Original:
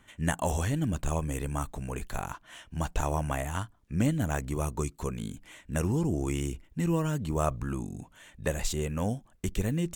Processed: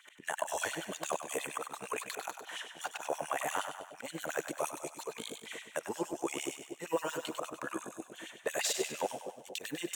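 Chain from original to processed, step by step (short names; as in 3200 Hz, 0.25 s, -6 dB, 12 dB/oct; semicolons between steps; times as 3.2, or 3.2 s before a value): HPF 68 Hz 12 dB/oct; auto swell 0.161 s; limiter -25 dBFS, peak gain reduction 11.5 dB; LFO high-pass sine 8.6 Hz 430–4100 Hz; on a send: split-band echo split 710 Hz, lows 0.236 s, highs 98 ms, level -8 dB; on the sum: gain +3 dB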